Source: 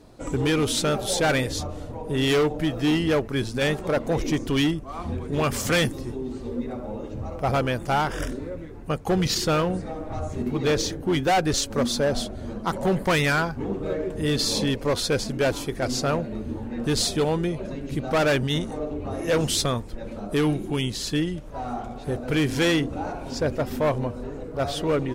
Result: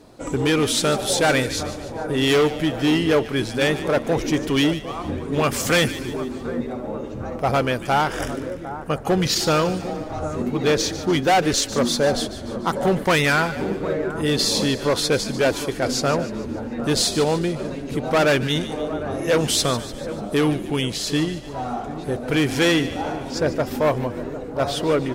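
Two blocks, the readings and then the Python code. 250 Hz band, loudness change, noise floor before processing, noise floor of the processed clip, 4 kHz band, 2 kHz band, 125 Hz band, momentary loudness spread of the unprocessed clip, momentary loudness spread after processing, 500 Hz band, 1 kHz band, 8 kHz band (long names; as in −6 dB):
+3.0 dB, +3.5 dB, −37 dBFS, −33 dBFS, +4.5 dB, +4.5 dB, +1.0 dB, 11 LU, 10 LU, +4.0 dB, +4.0 dB, +4.5 dB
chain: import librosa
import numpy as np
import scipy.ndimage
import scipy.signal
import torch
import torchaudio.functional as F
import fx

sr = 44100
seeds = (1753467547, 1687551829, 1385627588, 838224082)

y = fx.low_shelf(x, sr, hz=100.0, db=-9.5)
y = fx.echo_split(y, sr, split_hz=1500.0, low_ms=754, high_ms=147, feedback_pct=52, wet_db=-13)
y = y * librosa.db_to_amplitude(4.0)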